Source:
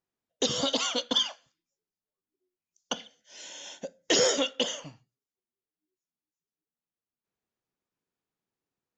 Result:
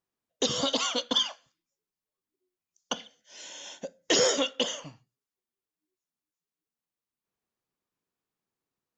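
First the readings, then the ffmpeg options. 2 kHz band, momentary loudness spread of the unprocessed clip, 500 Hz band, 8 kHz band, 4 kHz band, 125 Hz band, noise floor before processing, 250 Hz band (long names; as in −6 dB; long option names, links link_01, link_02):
0.0 dB, 18 LU, 0.0 dB, 0.0 dB, 0.0 dB, 0.0 dB, below −85 dBFS, 0.0 dB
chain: -af "equalizer=frequency=1100:width_type=o:width=0.28:gain=3.5"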